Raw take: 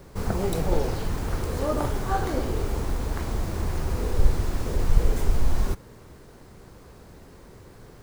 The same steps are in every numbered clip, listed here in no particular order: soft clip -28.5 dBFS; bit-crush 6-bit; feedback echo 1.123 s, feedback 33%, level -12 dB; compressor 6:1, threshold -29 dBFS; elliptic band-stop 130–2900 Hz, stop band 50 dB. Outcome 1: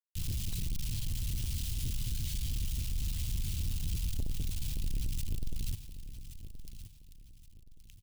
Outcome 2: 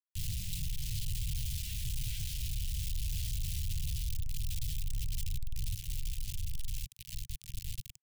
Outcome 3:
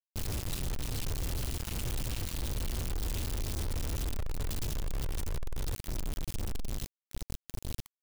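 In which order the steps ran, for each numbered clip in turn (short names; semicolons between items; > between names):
bit-crush > elliptic band-stop > soft clip > compressor > feedback echo; feedback echo > soft clip > bit-crush > compressor > elliptic band-stop; feedback echo > soft clip > elliptic band-stop > compressor > bit-crush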